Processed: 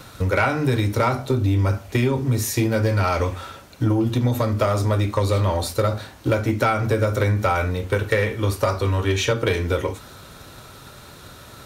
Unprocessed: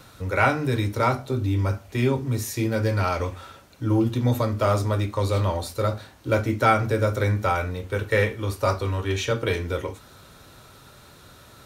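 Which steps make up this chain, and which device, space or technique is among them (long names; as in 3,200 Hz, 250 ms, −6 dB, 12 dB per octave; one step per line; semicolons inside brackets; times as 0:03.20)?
drum-bus smash (transient designer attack +5 dB, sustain +1 dB; downward compressor 6 to 1, threshold −20 dBFS, peak gain reduction 9 dB; soft clipping −16 dBFS, distortion −19 dB)
level +6 dB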